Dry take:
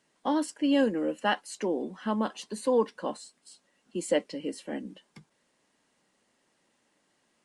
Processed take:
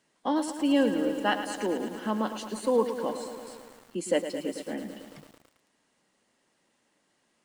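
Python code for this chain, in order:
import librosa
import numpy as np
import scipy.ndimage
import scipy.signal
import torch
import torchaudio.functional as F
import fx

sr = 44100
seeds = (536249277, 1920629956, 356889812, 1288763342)

y = fx.echo_crushed(x, sr, ms=110, feedback_pct=80, bits=8, wet_db=-10)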